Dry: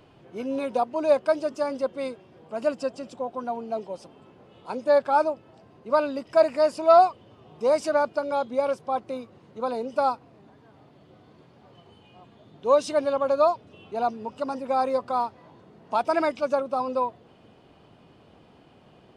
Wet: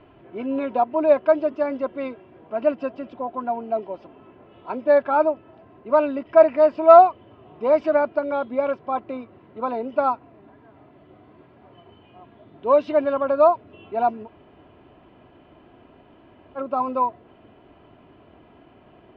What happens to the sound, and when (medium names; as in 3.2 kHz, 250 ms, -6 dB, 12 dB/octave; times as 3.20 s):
14.25–16.58 s: room tone, crossfade 0.06 s
whole clip: low-pass 2.8 kHz 24 dB/octave; comb 3 ms, depth 42%; trim +3 dB